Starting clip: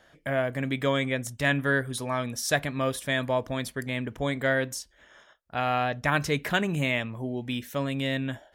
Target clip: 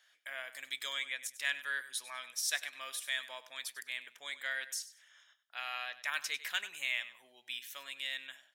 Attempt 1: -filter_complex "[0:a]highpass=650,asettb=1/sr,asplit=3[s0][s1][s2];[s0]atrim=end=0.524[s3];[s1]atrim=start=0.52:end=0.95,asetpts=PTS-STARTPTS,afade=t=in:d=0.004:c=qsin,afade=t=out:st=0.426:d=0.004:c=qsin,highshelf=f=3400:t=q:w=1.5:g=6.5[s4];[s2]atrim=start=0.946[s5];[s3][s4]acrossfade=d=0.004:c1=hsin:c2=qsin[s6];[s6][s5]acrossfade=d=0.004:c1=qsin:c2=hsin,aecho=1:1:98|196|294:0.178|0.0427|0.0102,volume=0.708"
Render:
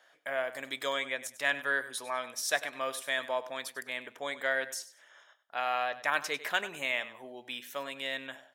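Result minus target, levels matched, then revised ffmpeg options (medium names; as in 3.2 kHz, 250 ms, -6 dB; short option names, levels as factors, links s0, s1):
500 Hz band +14.5 dB
-filter_complex "[0:a]highpass=2200,asettb=1/sr,asplit=3[s0][s1][s2];[s0]atrim=end=0.524[s3];[s1]atrim=start=0.52:end=0.95,asetpts=PTS-STARTPTS,afade=t=in:d=0.004:c=qsin,afade=t=out:st=0.426:d=0.004:c=qsin,highshelf=f=3400:t=q:w=1.5:g=6.5[s4];[s2]atrim=start=0.946[s5];[s3][s4]acrossfade=d=0.004:c1=hsin:c2=qsin[s6];[s6][s5]acrossfade=d=0.004:c1=qsin:c2=hsin,aecho=1:1:98|196|294:0.178|0.0427|0.0102,volume=0.708"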